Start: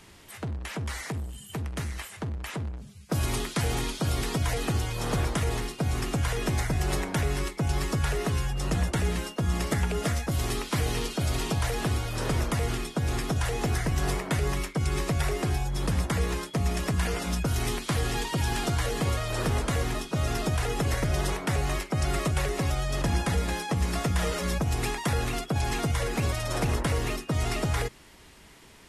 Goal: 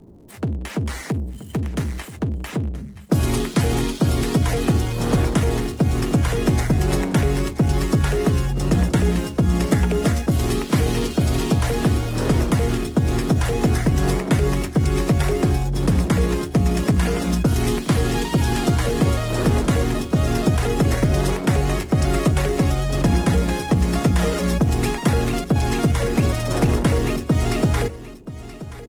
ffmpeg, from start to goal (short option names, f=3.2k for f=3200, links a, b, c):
-filter_complex "[0:a]acrossover=split=720[a][b];[b]aeval=exprs='sgn(val(0))*max(abs(val(0))-0.00376,0)':c=same[c];[a][c]amix=inputs=2:normalize=0,equalizer=f=240:t=o:w=1.9:g=7.5,aecho=1:1:977:0.168,volume=5.5dB"